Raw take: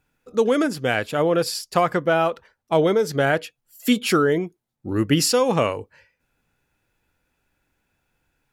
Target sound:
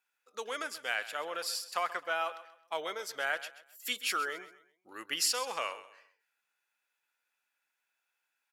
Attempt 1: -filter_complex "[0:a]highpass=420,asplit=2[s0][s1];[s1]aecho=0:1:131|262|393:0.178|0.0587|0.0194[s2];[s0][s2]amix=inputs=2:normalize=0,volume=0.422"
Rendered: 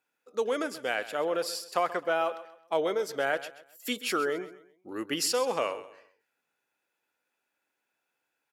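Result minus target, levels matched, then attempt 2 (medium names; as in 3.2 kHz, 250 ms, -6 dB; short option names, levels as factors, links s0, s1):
500 Hz band +7.0 dB
-filter_complex "[0:a]highpass=1100,asplit=2[s0][s1];[s1]aecho=0:1:131|262|393:0.178|0.0587|0.0194[s2];[s0][s2]amix=inputs=2:normalize=0,volume=0.422"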